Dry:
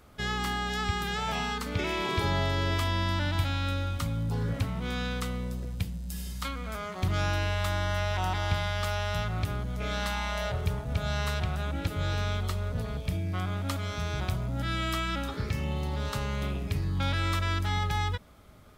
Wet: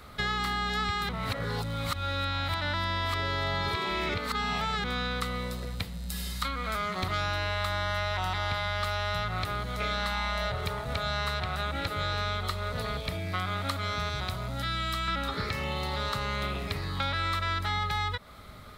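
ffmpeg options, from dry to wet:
-filter_complex "[0:a]asettb=1/sr,asplit=3[s0][s1][s2];[s0]atrim=end=14.094[s3];[s1]atrim=start=14.09:end=15.08,asetpts=PTS-STARTPTS,afade=t=in:d=0.004:c=qsin,afade=t=out:st=0.986:d=0.004:c=qsin,acrossover=split=240|3000[s4][s5][s6];[s5]acompressor=threshold=0.00562:ratio=2:attack=3.2:release=140:knee=2.83:detection=peak[s7];[s4][s7][s6]amix=inputs=3:normalize=0[s8];[s2]atrim=start=15.076[s9];[s3][s8]acrossfade=d=0.004:c1=hsin:c2=qsin[s10];[s10][s9]acrossfade=d=0.004:c1=qsin:c2=hsin,asplit=3[s11][s12][s13];[s11]atrim=end=1.092[s14];[s12]atrim=start=1.088:end=4.842,asetpts=PTS-STARTPTS,areverse[s15];[s13]atrim=start=4.838[s16];[s14][s15]acrossfade=d=0.004:c1=hsin:c2=hsin[s17];[s17][s16]acrossfade=d=0.004:c1=hsin:c2=hsin,equalizer=f=315:t=o:w=0.33:g=-5,equalizer=f=1250:t=o:w=0.33:g=6,equalizer=f=2000:t=o:w=0.33:g=6,equalizer=f=4000:t=o:w=0.33:g=10,equalizer=f=6300:t=o:w=0.33:g=-3,acrossover=split=360|1700[s18][s19][s20];[s18]acompressor=threshold=0.00891:ratio=4[s21];[s19]acompressor=threshold=0.0112:ratio=4[s22];[s20]acompressor=threshold=0.00794:ratio=4[s23];[s21][s22][s23]amix=inputs=3:normalize=0,volume=2"

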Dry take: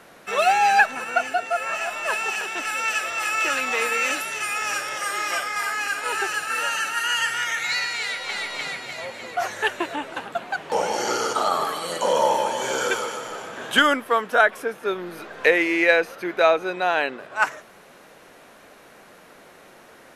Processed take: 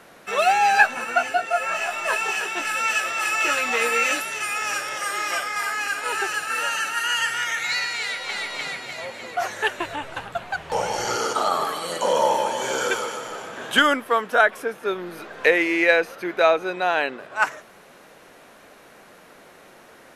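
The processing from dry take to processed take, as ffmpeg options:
-filter_complex "[0:a]asettb=1/sr,asplit=3[s0][s1][s2];[s0]atrim=end=0.734[s3];[s1]atrim=start=0.73:end=4.2,asetpts=PTS-STARTPTS,afade=t=in:d=0.004:c=qsin,afade=t=out:st=3.466:d=0.004:c=qsin,asplit=2[s4][s5];[s5]adelay=17,volume=0.631[s6];[s4][s6]amix=inputs=2:normalize=0,atrim=end_sample=153027[s7];[s2]atrim=start=4.196[s8];[s3][s7]acrossfade=d=0.004:c1=hsin:c2=qsin[s9];[s9][s8]acrossfade=d=0.004:c1=qsin:c2=hsin,asplit=3[s10][s11][s12];[s10]afade=t=out:st=9.79:d=0.02[s13];[s11]asubboost=boost=12:cutoff=75,afade=t=in:st=9.79:d=0.02,afade=t=out:st=11.15:d=0.02[s14];[s12]afade=t=in:st=11.15:d=0.02[s15];[s13][s14][s15]amix=inputs=3:normalize=0"

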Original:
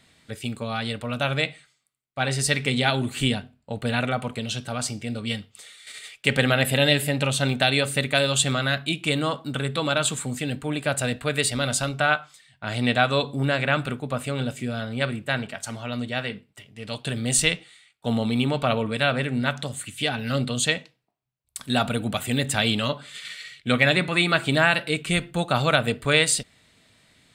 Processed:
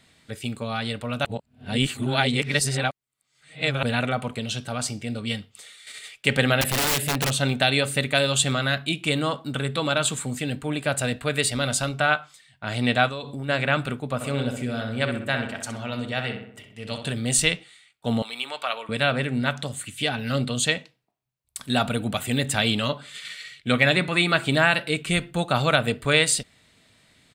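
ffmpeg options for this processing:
-filter_complex "[0:a]asettb=1/sr,asplit=3[s0][s1][s2];[s0]atrim=end=6.614[s3];[s1]atrim=start=6.61:end=7.31,asetpts=PTS-STARTPTS,afade=t=in:d=0.004:c=qsin,afade=t=out:st=0.696:d=0.004:c=qsin,aeval=exprs='(mod(7.5*val(0)+1,2)-1)/7.5':c=same[s4];[s2]atrim=start=7.306[s5];[s3][s4]acrossfade=d=0.004:c1=hsin:c2=qsin[s6];[s6][s5]acrossfade=d=0.004:c1=qsin:c2=hsin,asplit=3[s7][s8][s9];[s7]afade=t=out:st=13.08:d=0.02[s10];[s8]acompressor=threshold=0.0355:ratio=6:attack=3.2:release=140:knee=1:detection=peak,afade=t=in:st=13.08:d=0.02,afade=t=out:st=13.48:d=0.02[s11];[s9]afade=t=in:st=13.48:d=0.02[s12];[s10][s11][s12]amix=inputs=3:normalize=0,asplit=3[s13][s14][s15];[s13]afade=t=out:st=14.2:d=0.02[s16];[s14]asplit=2[s17][s18];[s18]adelay=64,lowpass=f=2600:p=1,volume=0.501,asplit=2[s19][s20];[s20]adelay=64,lowpass=f=2600:p=1,volume=0.54,asplit=2[s21][s22];[s22]adelay=64,lowpass=f=2600:p=1,volume=0.54,asplit=2[s23][s24];[s24]adelay=64,lowpass=f=2600:p=1,volume=0.54,asplit=2[s25][s26];[s26]adelay=64,lowpass=f=2600:p=1,volume=0.54,asplit=2[s27][s28];[s28]adelay=64,lowpass=f=2600:p=1,volume=0.54,asplit=2[s29][s30];[s30]adelay=64,lowpass=f=2600:p=1,volume=0.54[s31];[s17][s19][s21][s23][s25][s27][s29][s31]amix=inputs=8:normalize=0,afade=t=in:st=14.2:d=0.02,afade=t=out:st=17.11:d=0.02[s32];[s15]afade=t=in:st=17.11:d=0.02[s33];[s16][s32][s33]amix=inputs=3:normalize=0,asettb=1/sr,asplit=3[s34][s35][s36];[s34]atrim=end=18.224[s37];[s35]atrim=start=18.22:end=18.89,asetpts=PTS-STARTPTS,afade=t=in:d=0.004:c=qsin,afade=t=out:st=0.666:d=0.004:c=qsin,highpass=960[s38];[s36]atrim=start=18.886[s39];[s37][s38]acrossfade=d=0.004:c1=hsin:c2=qsin[s40];[s40][s39]acrossfade=d=0.004:c1=qsin:c2=hsin,asplit=3[s41][s42][s43];[s41]atrim=end=1.252[s44];[s42]atrim=start=1.248:end=3.832,asetpts=PTS-STARTPTS,areverse[s45];[s43]atrim=start=3.828[s46];[s44][s45]acrossfade=d=0.004:c1=hsin:c2=hsin[s47];[s47][s46]acrossfade=d=0.004:c1=hsin:c2=hsin"

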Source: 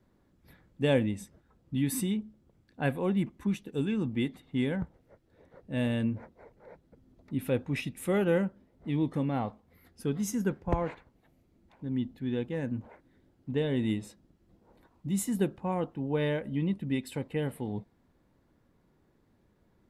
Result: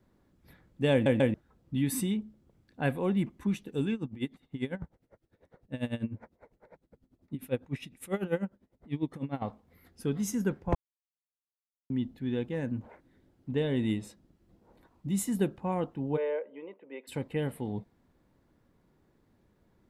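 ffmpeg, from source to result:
-filter_complex "[0:a]asettb=1/sr,asplit=3[s0][s1][s2];[s0]atrim=end=3.944[s3];[s1]atrim=start=3.94:end=9.42,asetpts=PTS-STARTPTS,afade=t=in:d=0.004:c=qsin,afade=t=out:st=5.476:d=0.004:c=qsin,aeval=exprs='val(0)*pow(10,-20*(0.5-0.5*cos(2*PI*10*n/s))/20)':c=same[s4];[s2]atrim=start=9.416[s5];[s3][s4]acrossfade=d=0.004:c1=hsin:c2=qsin[s6];[s6][s5]acrossfade=d=0.004:c1=qsin:c2=hsin,asplit=3[s7][s8][s9];[s7]afade=t=out:st=16.16:d=0.02[s10];[s8]highpass=f=460:w=0.5412,highpass=f=460:w=1.3066,equalizer=f=470:t=q:w=4:g=7,equalizer=f=740:t=q:w=4:g=-5,equalizer=f=1300:t=q:w=4:g=-6,equalizer=f=1800:t=q:w=4:g=-8,lowpass=f=2100:w=0.5412,lowpass=f=2100:w=1.3066,afade=t=in:st=16.16:d=0.02,afade=t=out:st=17.07:d=0.02[s11];[s9]afade=t=in:st=17.07:d=0.02[s12];[s10][s11][s12]amix=inputs=3:normalize=0,asplit=6[s13][s14][s15][s16][s17][s18];[s13]atrim=end=1.062[s19];[s14]atrim=start=0.918:end=1.062[s20];[s15]atrim=start=0.918:end=1.062[s21];[s16]atrim=start=1.338:end=10.75,asetpts=PTS-STARTPTS,afade=t=out:st=9.408:d=0.004:c=hsin[s22];[s17]atrim=start=10.75:end=11.9,asetpts=PTS-STARTPTS,volume=0[s23];[s18]atrim=start=11.9,asetpts=PTS-STARTPTS,afade=t=in:d=0.004:c=hsin[s24];[s19][s20]acrossfade=d=0.004:c1=hsin:c2=hsin[s25];[s25][s21]acrossfade=d=0.004:c1=hsin:c2=hsin[s26];[s22][s23][s24]concat=n=3:v=0:a=1[s27];[s26][s27]acrossfade=d=0.004:c1=hsin:c2=hsin"

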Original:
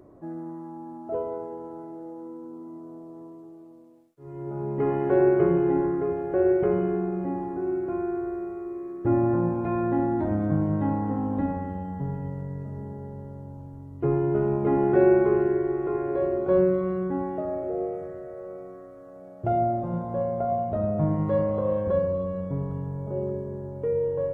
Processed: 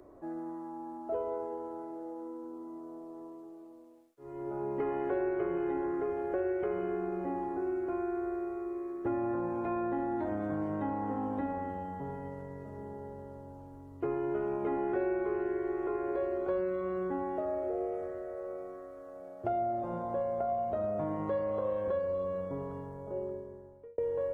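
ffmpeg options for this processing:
-filter_complex "[0:a]asplit=2[s0][s1];[s0]atrim=end=23.98,asetpts=PTS-STARTPTS,afade=t=out:st=22.72:d=1.26[s2];[s1]atrim=start=23.98,asetpts=PTS-STARTPTS,afade=t=in:d=0.004:c=hsin[s3];[s2][s3]concat=n=2:v=0:a=1,equalizer=f=150:t=o:w=1.2:g=-14.5,acrossover=split=110|1300[s4][s5][s6];[s4]acompressor=threshold=0.00158:ratio=4[s7];[s5]acompressor=threshold=0.0282:ratio=4[s8];[s6]acompressor=threshold=0.00355:ratio=4[s9];[s7][s8][s9]amix=inputs=3:normalize=0"

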